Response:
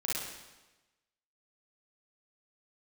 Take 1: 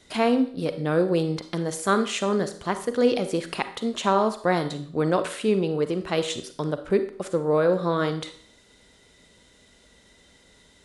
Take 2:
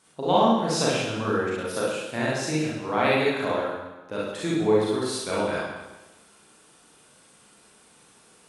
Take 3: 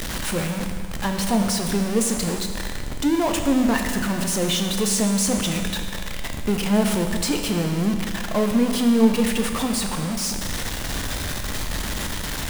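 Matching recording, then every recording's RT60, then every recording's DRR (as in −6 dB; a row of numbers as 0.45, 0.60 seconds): 2; 0.55, 1.1, 2.0 seconds; 10.0, −7.0, 4.0 decibels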